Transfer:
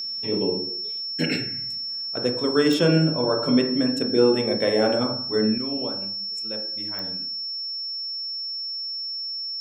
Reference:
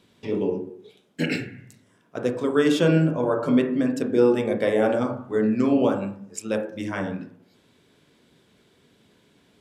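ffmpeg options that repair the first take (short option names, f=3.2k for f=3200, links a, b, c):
-af "adeclick=t=4,bandreject=f=5.4k:w=30,asetnsamples=n=441:p=0,asendcmd='5.58 volume volume 10.5dB',volume=0dB"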